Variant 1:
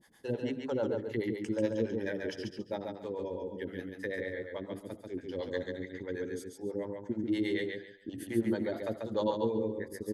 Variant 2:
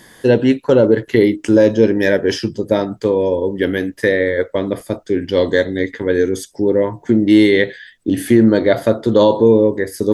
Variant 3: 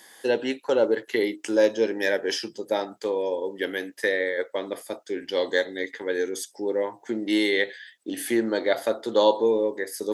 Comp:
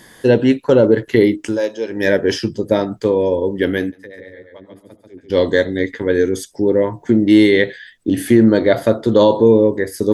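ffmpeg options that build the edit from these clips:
-filter_complex "[1:a]asplit=3[a][b][c];[a]atrim=end=1.63[d];[2:a]atrim=start=1.39:end=2.09[e];[b]atrim=start=1.85:end=3.922[f];[0:a]atrim=start=3.918:end=5.302[g];[c]atrim=start=5.298[h];[d][e]acrossfade=d=0.24:c1=tri:c2=tri[i];[i][f]acrossfade=d=0.24:c1=tri:c2=tri[j];[j][g]acrossfade=d=0.004:c1=hsin:c2=hsin[k];[k][h]acrossfade=d=0.004:c1=hsin:c2=hsin"

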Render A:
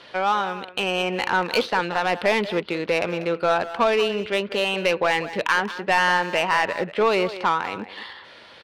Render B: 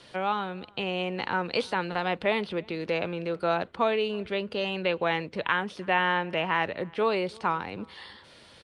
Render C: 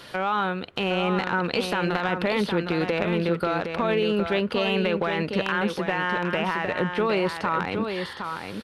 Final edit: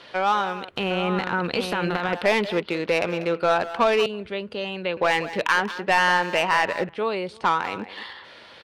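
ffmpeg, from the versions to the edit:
-filter_complex "[1:a]asplit=2[a][b];[0:a]asplit=4[c][d][e][f];[c]atrim=end=0.692[g];[2:a]atrim=start=0.688:end=2.132[h];[d]atrim=start=2.128:end=4.062[i];[a]atrim=start=4.058:end=4.972[j];[e]atrim=start=4.968:end=6.892[k];[b]atrim=start=6.888:end=7.442[l];[f]atrim=start=7.438[m];[g][h]acrossfade=d=0.004:c1=hsin:c2=hsin[n];[n][i]acrossfade=d=0.004:c1=hsin:c2=hsin[o];[o][j]acrossfade=d=0.004:c1=hsin:c2=hsin[p];[p][k]acrossfade=d=0.004:c1=hsin:c2=hsin[q];[q][l]acrossfade=d=0.004:c1=hsin:c2=hsin[r];[r][m]acrossfade=d=0.004:c1=hsin:c2=hsin"

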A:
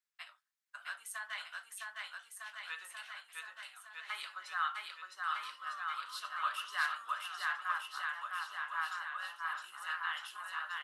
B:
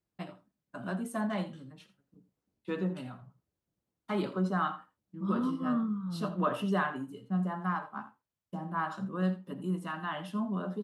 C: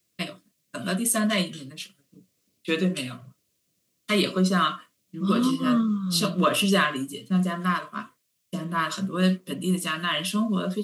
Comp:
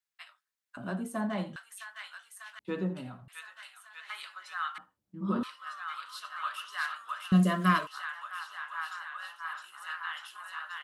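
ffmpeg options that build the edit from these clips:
-filter_complex "[1:a]asplit=3[a][b][c];[0:a]asplit=5[d][e][f][g][h];[d]atrim=end=0.772[i];[a]atrim=start=0.768:end=1.562[j];[e]atrim=start=1.558:end=2.592[k];[b]atrim=start=2.588:end=3.282[l];[f]atrim=start=3.278:end=4.782[m];[c]atrim=start=4.778:end=5.432[n];[g]atrim=start=5.428:end=7.322[o];[2:a]atrim=start=7.318:end=7.872[p];[h]atrim=start=7.868[q];[i][j]acrossfade=d=0.004:c1=hsin:c2=hsin[r];[r][k]acrossfade=d=0.004:c1=hsin:c2=hsin[s];[s][l]acrossfade=d=0.004:c1=hsin:c2=hsin[t];[t][m]acrossfade=d=0.004:c1=hsin:c2=hsin[u];[u][n]acrossfade=d=0.004:c1=hsin:c2=hsin[v];[v][o]acrossfade=d=0.004:c1=hsin:c2=hsin[w];[w][p]acrossfade=d=0.004:c1=hsin:c2=hsin[x];[x][q]acrossfade=d=0.004:c1=hsin:c2=hsin"

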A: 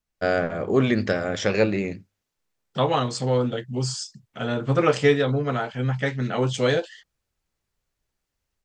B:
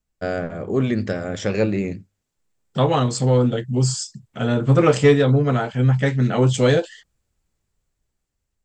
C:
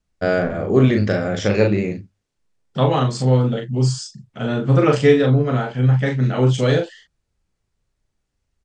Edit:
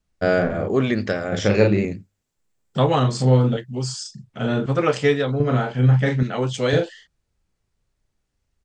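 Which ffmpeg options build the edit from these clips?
-filter_complex "[0:a]asplit=4[a][b][c][d];[2:a]asplit=6[e][f][g][h][i][j];[e]atrim=end=0.682[k];[a]atrim=start=0.678:end=1.322[l];[f]atrim=start=1.318:end=1.852[m];[1:a]atrim=start=1.848:end=3.032[n];[g]atrim=start=3.028:end=3.572[o];[b]atrim=start=3.568:end=4.052[p];[h]atrim=start=4.048:end=4.662[q];[c]atrim=start=4.658:end=5.402[r];[i]atrim=start=5.398:end=6.232[s];[d]atrim=start=6.228:end=6.732[t];[j]atrim=start=6.728[u];[k][l]acrossfade=d=0.004:c1=hsin:c2=hsin[v];[v][m]acrossfade=d=0.004:c1=hsin:c2=hsin[w];[w][n]acrossfade=d=0.004:c1=hsin:c2=hsin[x];[x][o]acrossfade=d=0.004:c1=hsin:c2=hsin[y];[y][p]acrossfade=d=0.004:c1=hsin:c2=hsin[z];[z][q]acrossfade=d=0.004:c1=hsin:c2=hsin[aa];[aa][r]acrossfade=d=0.004:c1=hsin:c2=hsin[ab];[ab][s]acrossfade=d=0.004:c1=hsin:c2=hsin[ac];[ac][t]acrossfade=d=0.004:c1=hsin:c2=hsin[ad];[ad][u]acrossfade=d=0.004:c1=hsin:c2=hsin"

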